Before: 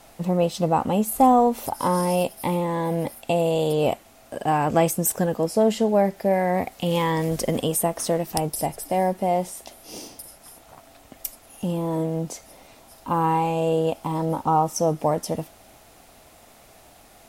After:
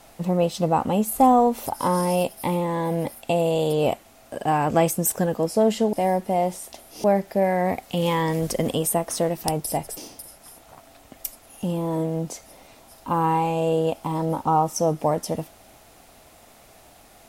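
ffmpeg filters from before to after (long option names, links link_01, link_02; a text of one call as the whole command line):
ffmpeg -i in.wav -filter_complex "[0:a]asplit=4[link_01][link_02][link_03][link_04];[link_01]atrim=end=5.932[link_05];[link_02]atrim=start=8.858:end=9.972[link_06];[link_03]atrim=start=5.928:end=8.862[link_07];[link_04]atrim=start=9.968[link_08];[link_05][link_06]acrossfade=duration=0.004:curve1=hsin:curve2=hsin[link_09];[link_09][link_07]acrossfade=duration=0.004:curve1=hsin:curve2=hsin[link_10];[link_10][link_08]acrossfade=duration=0.004:curve1=hsin:curve2=hsin" out.wav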